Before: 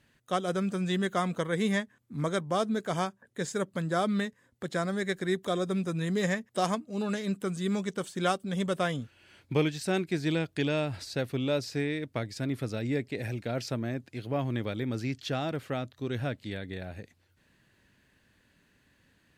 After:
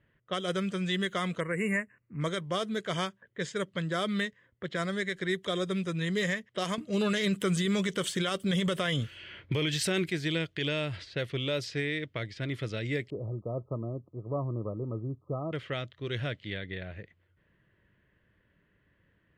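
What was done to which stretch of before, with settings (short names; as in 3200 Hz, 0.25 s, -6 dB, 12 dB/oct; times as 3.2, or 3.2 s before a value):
1.4–2.21 spectral delete 2900–6800 Hz
6.78–10.1 gain +9 dB
13.1–15.53 brick-wall FIR low-pass 1300 Hz
whole clip: low-pass opened by the level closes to 1200 Hz, open at -25 dBFS; thirty-one-band EQ 250 Hz -10 dB, 800 Hz -10 dB, 2000 Hz +7 dB, 3150 Hz +10 dB; limiter -20.5 dBFS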